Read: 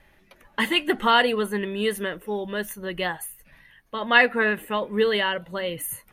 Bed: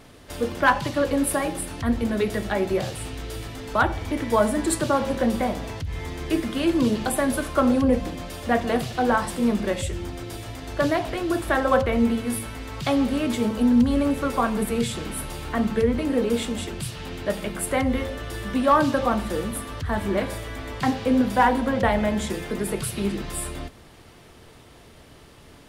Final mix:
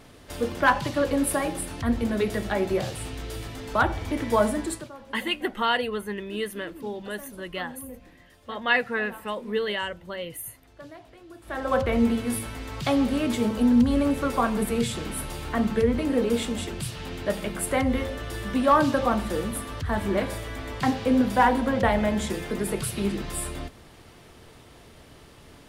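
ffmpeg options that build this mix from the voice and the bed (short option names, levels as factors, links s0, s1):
-filter_complex "[0:a]adelay=4550,volume=0.531[s0];[1:a]volume=9.44,afade=t=out:st=4.46:d=0.44:silence=0.0944061,afade=t=in:st=11.41:d=0.51:silence=0.0891251[s1];[s0][s1]amix=inputs=2:normalize=0"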